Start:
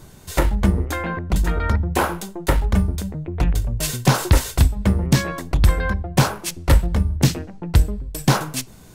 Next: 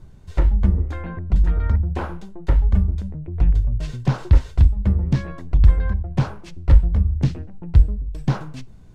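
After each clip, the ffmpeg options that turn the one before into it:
-filter_complex "[0:a]acrossover=split=6800[a][b];[b]acompressor=threshold=-41dB:ratio=4:attack=1:release=60[c];[a][c]amix=inputs=2:normalize=0,aemphasis=mode=reproduction:type=bsi,volume=-10.5dB"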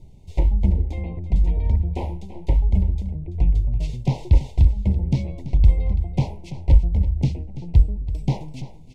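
-af "asuperstop=centerf=1400:order=12:qfactor=1.3,aecho=1:1:334:0.2,volume=-1.5dB"

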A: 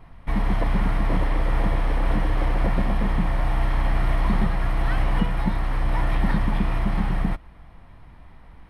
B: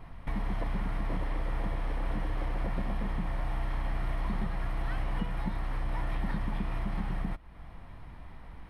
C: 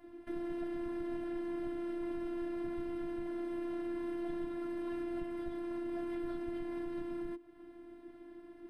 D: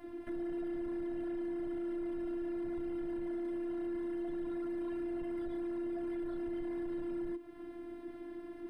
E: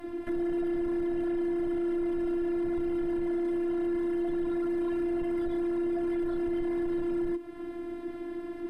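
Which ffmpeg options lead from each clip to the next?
-af "acompressor=threshold=-37dB:ratio=2"
-af "afreqshift=-300,afftfilt=real='hypot(re,im)*cos(PI*b)':imag='0':win_size=512:overlap=0.75,volume=-4dB"
-af "alimiter=level_in=11dB:limit=-24dB:level=0:latency=1,volume=-11dB,asoftclip=type=tanh:threshold=-37.5dB,volume=6.5dB"
-af "volume=8.5dB" -ar 44100 -c:a sbc -b:a 128k

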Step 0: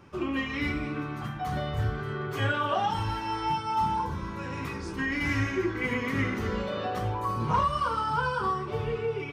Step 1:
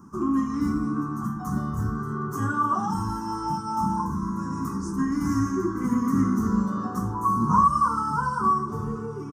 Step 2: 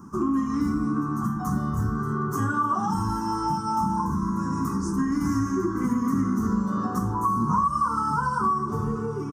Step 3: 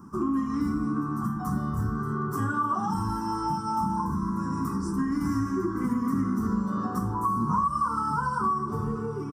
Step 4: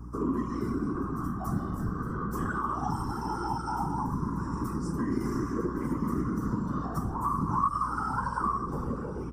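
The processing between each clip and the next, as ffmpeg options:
-af "firequalizer=gain_entry='entry(130,0);entry(200,14);entry(560,-15);entry(1100,9);entry(2300,-27);entry(4000,-16);entry(6000,8)':delay=0.05:min_phase=1"
-af "acompressor=threshold=-26dB:ratio=3,volume=4dB"
-af "bandreject=f=6.5k:w=5.1,volume=-2.5dB"
-af "afftfilt=real='hypot(re,im)*cos(2*PI*random(0))':imag='hypot(re,im)*sin(2*PI*random(1))':win_size=512:overlap=0.75,aeval=exprs='val(0)+0.00708*(sin(2*PI*60*n/s)+sin(2*PI*2*60*n/s)/2+sin(2*PI*3*60*n/s)/3+sin(2*PI*4*60*n/s)/4+sin(2*PI*5*60*n/s)/5)':c=same,volume=2.5dB"

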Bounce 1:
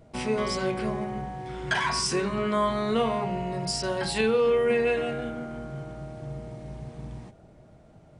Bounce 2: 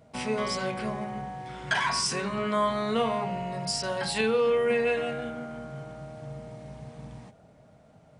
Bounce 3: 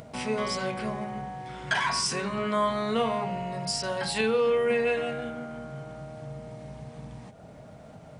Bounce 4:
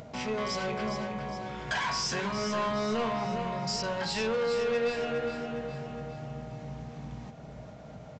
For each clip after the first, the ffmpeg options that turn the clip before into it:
-af "highpass=f=150:p=1,equalizer=f=350:w=6:g=-13.5"
-af "acompressor=mode=upward:threshold=-37dB:ratio=2.5"
-af "aresample=16000,asoftclip=type=tanh:threshold=-26.5dB,aresample=44100,aecho=1:1:411|822|1233|1644|2055|2466:0.398|0.191|0.0917|0.044|0.0211|0.0101"

